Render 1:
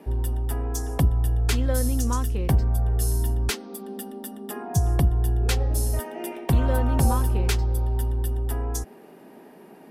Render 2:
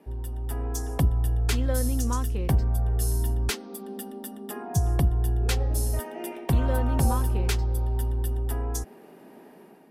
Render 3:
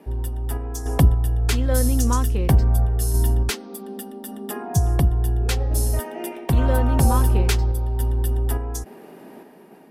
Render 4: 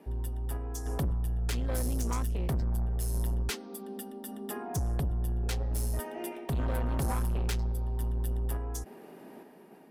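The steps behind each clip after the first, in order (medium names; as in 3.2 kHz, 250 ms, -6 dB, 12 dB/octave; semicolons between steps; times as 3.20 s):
level rider gain up to 7 dB; trim -8.5 dB
random-step tremolo; trim +7.5 dB
saturation -20 dBFS, distortion -9 dB; trim -6.5 dB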